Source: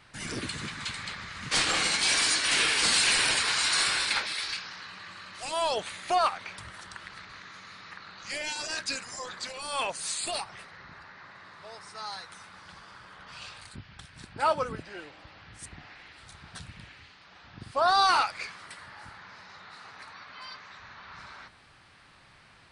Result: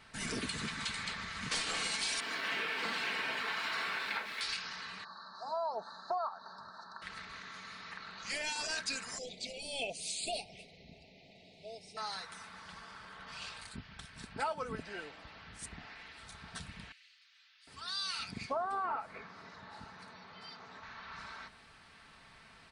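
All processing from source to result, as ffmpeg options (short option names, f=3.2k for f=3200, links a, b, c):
-filter_complex "[0:a]asettb=1/sr,asplit=3[a][b][c];[a]atrim=end=2.204[d];[b]atrim=start=2.2:end=4.41,asetpts=PTS-STARTPTS,afade=t=in:d=0.004:c=qsin,afade=t=out:st=2.206:d=0.004:c=qsin,highpass=150,lowpass=2.3k,aeval=exprs='sgn(val(0))*max(abs(val(0))-0.00251,0)':c=same,asplit=2[e][f];[f]adelay=20,volume=-12dB[g];[e][g]amix=inputs=2:normalize=0,atrim=end_sample=97461[h];[c]atrim=start=4.406[i];[d][h]acrossfade=d=0.004:c1=hsin:c2=qsin[j];[j][i]acrossfade=d=0.004:c1=qsin:c2=hsin,asettb=1/sr,asplit=3[k][l][m];[k]atrim=end=5.044[n];[l]atrim=start=5.04:end=7.02,asetpts=PTS-STARTPTS,afade=t=in:d=0.004:c=qsin,afade=t=out:st=1.976:d=0.004:c=qsin,acrossover=split=2600[o][p];[p]acompressor=threshold=-43dB:ratio=4:attack=1:release=60[q];[o][q]amix=inputs=2:normalize=0,asuperstop=centerf=2600:order=20:qfactor=1.2,highpass=270,equalizer=f=310:t=q:w=4:g=-9,equalizer=f=460:t=q:w=4:g=-9,equalizer=f=910:t=q:w=4:g=4,equalizer=f=1.6k:t=q:w=4:g=-7,equalizer=f=2.9k:t=q:w=4:g=8,lowpass=f=4.2k:w=0.5412,lowpass=f=4.2k:w=1.3066[r];[m]atrim=start=7.016[s];[n][r]acrossfade=d=0.004:c1=hsin:c2=qsin[t];[t][s]acrossfade=d=0.004:c1=qsin:c2=hsin,asettb=1/sr,asplit=3[u][v][w];[u]atrim=end=9.184[x];[v]atrim=start=9.18:end=11.97,asetpts=PTS-STARTPTS,afade=t=in:d=0.004:c=qsin,afade=t=out:st=2.786:d=0.004:c=qsin,asuperstop=centerf=1300:order=12:qfactor=0.86,highshelf=f=5.8k:g=-8.5[y];[w]atrim=start=11.966[z];[x][y]acrossfade=d=0.004:c1=hsin:c2=qsin[aa];[aa][z]acrossfade=d=0.004:c1=qsin:c2=hsin,asettb=1/sr,asplit=3[ab][ac][ad];[ab]atrim=end=16.924[ae];[ac]atrim=start=16.92:end=20.83,asetpts=PTS-STARTPTS,afade=t=in:d=0.004:c=qsin,afade=t=out:st=3.906:d=0.004:c=qsin,highpass=f=110:p=1,tiltshelf=f=740:g=5,acrossover=split=2000[af][ag];[af]adelay=750[ah];[ah][ag]amix=inputs=2:normalize=0,atrim=end_sample=172431[ai];[ad]atrim=start=20.826[aj];[ae][ai]acrossfade=d=0.004:c1=hsin:c2=qsin[ak];[ak][aj]acrossfade=d=0.004:c1=qsin:c2=hsin,aecho=1:1:4.5:0.42,acompressor=threshold=-31dB:ratio=6,volume=-2dB"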